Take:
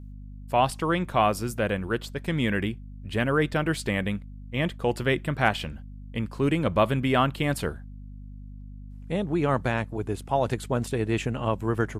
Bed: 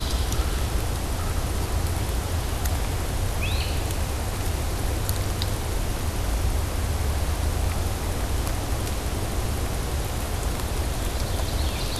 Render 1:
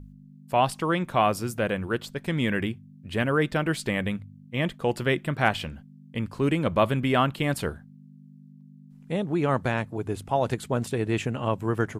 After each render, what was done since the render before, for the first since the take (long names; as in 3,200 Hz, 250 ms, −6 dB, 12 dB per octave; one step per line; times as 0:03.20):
hum removal 50 Hz, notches 2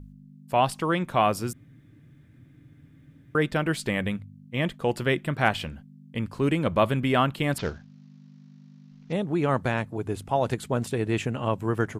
0:01.53–0:03.35: fill with room tone
0:07.58–0:09.13: variable-slope delta modulation 32 kbit/s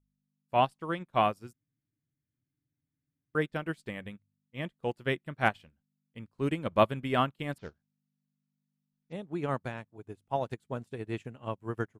expander for the loud parts 2.5 to 1, over −40 dBFS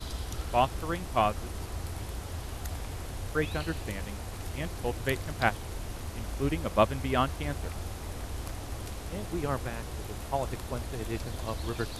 mix in bed −11.5 dB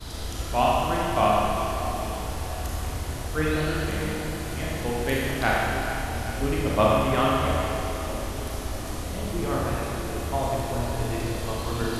echo with a time of its own for lows and highs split 720 Hz, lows 643 ms, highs 408 ms, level −10.5 dB
four-comb reverb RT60 2.1 s, combs from 26 ms, DRR −5 dB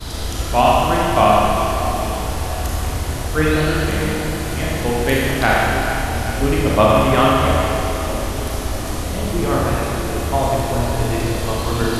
level +8.5 dB
brickwall limiter −2 dBFS, peak gain reduction 3 dB